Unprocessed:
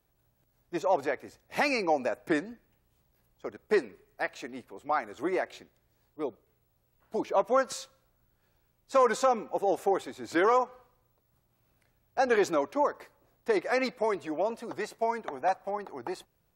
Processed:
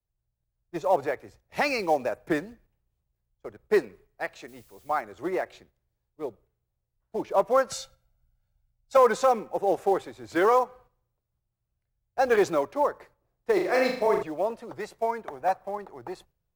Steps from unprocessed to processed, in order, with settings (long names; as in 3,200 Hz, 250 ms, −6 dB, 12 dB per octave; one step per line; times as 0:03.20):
0:04.47–0:05.00: background noise blue −53 dBFS
spectral tilt −1.5 dB per octave
in parallel at −8 dB: floating-point word with a short mantissa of 2 bits
0:07.71–0:08.97: on the sum: comb filter 1.4 ms, depth 84%
noise gate −51 dBFS, range −6 dB
parametric band 260 Hz −6.5 dB 0.54 octaves
0:13.53–0:14.23: flutter between parallel walls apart 6.7 metres, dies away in 0.62 s
multiband upward and downward expander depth 40%
level −1.5 dB